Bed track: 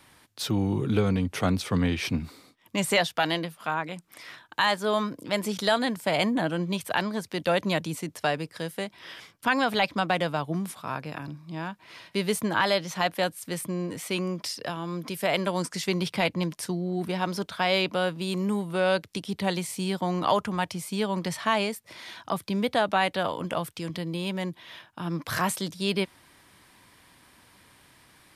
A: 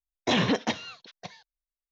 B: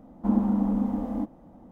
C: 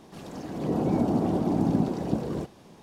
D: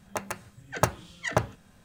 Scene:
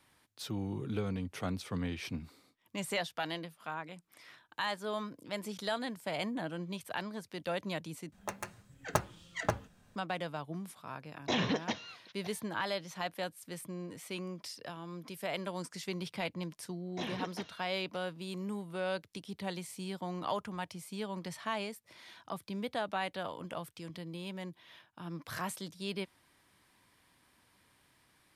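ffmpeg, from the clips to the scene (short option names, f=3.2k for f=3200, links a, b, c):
-filter_complex "[1:a]asplit=2[a][b];[0:a]volume=-11.5dB[c];[4:a]flanger=delay=3.4:depth=4.9:regen=-62:speed=1.4:shape=sinusoidal[d];[c]asplit=2[e][f];[e]atrim=end=8.124[g];[d]atrim=end=1.84,asetpts=PTS-STARTPTS,volume=-2.5dB[h];[f]atrim=start=9.956[i];[a]atrim=end=1.91,asetpts=PTS-STARTPTS,volume=-7.5dB,afade=t=in:d=0.004:c=hsin,afade=t=out:st=1.906:d=0.004:c=hsin,adelay=11010[j];[b]atrim=end=1.91,asetpts=PTS-STARTPTS,volume=-16dB,afade=t=in:d=0.004:c=hsin,afade=t=out:st=1.906:d=0.004:c=hsin,adelay=16700[k];[g][h]acrossfade=d=0.004:c1=hsin:c2=hsin[l];[l][i]acrossfade=d=0.004:c1=hsin:c2=hsin[m];[m][j][k]amix=inputs=3:normalize=0"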